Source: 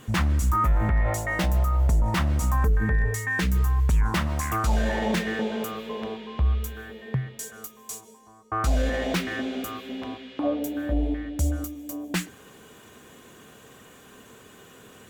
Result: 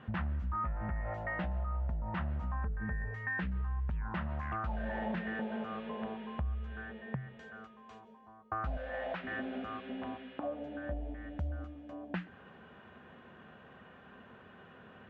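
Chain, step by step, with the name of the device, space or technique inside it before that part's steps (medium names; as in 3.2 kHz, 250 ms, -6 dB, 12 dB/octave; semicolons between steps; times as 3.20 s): bass amplifier (compression 4:1, threshold -30 dBFS, peak gain reduction 10.5 dB; cabinet simulation 64–2400 Hz, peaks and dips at 120 Hz -8 dB, 300 Hz -10 dB, 440 Hz -8 dB, 1.1 kHz -4 dB, 2.2 kHz -7 dB); 8.77–9.24 s: resonant low shelf 440 Hz -8.5 dB, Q 1.5; trim -1 dB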